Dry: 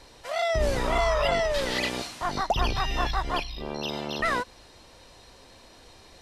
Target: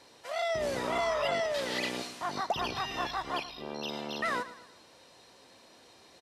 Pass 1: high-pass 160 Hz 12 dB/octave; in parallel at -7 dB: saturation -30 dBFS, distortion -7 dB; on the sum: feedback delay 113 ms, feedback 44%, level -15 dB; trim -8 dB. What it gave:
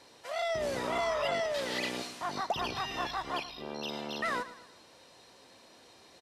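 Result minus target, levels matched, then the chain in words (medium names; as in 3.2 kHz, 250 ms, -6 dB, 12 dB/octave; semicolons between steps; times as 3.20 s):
saturation: distortion +9 dB
high-pass 160 Hz 12 dB/octave; in parallel at -7 dB: saturation -20.5 dBFS, distortion -17 dB; on the sum: feedback delay 113 ms, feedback 44%, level -15 dB; trim -8 dB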